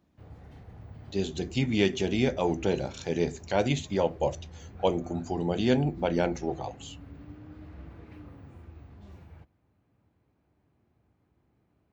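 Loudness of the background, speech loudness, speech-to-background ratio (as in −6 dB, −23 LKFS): −47.5 LKFS, −29.0 LKFS, 18.5 dB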